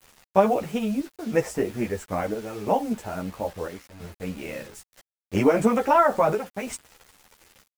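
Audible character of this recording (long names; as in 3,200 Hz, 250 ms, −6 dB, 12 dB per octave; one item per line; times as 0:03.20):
chopped level 0.75 Hz, depth 65%, duty 75%
a quantiser's noise floor 8 bits, dither none
a shimmering, thickened sound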